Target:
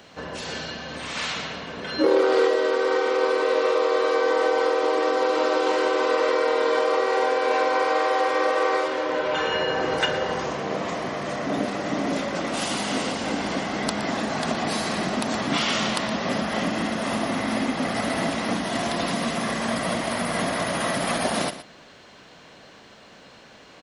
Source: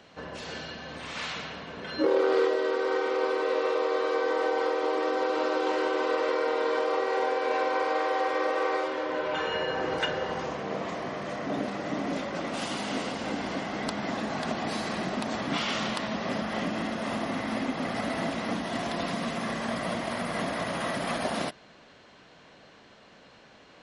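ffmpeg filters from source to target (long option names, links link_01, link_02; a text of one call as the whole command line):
ffmpeg -i in.wav -af "highshelf=frequency=7900:gain=11,aecho=1:1:118:0.224,volume=5dB" out.wav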